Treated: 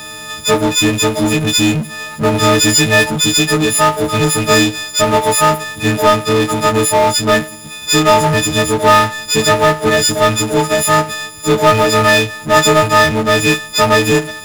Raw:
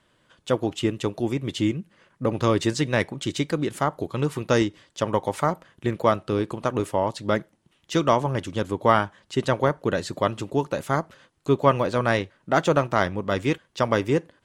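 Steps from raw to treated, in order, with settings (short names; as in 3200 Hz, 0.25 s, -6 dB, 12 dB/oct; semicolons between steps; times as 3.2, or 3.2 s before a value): frequency quantiser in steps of 6 st; power-law curve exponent 0.5; gain +1.5 dB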